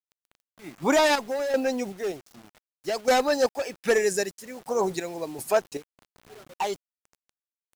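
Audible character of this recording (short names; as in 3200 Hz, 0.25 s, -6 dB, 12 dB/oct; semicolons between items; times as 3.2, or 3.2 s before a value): chopped level 1.3 Hz, depth 60%, duty 50%; a quantiser's noise floor 8-bit, dither none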